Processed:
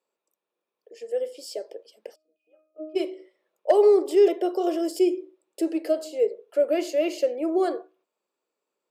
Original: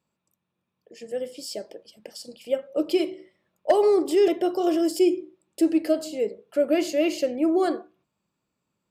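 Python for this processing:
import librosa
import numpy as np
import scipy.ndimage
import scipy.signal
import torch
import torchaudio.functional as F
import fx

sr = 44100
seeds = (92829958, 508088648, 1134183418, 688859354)

y = fx.ladder_highpass(x, sr, hz=370.0, resonance_pct=50)
y = fx.octave_resonator(y, sr, note='D#', decay_s=0.46, at=(2.14, 2.95), fade=0.02)
y = F.gain(torch.from_numpy(y), 5.5).numpy()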